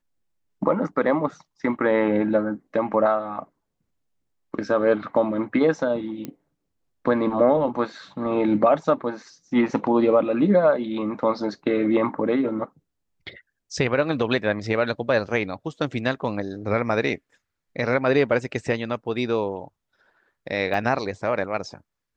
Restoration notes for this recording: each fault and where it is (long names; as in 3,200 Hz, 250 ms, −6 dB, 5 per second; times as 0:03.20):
0:06.25: click −18 dBFS
0:20.74: drop-out 3.3 ms